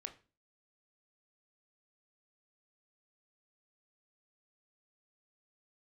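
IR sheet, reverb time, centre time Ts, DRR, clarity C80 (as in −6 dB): 0.35 s, 8 ms, 7.0 dB, 19.5 dB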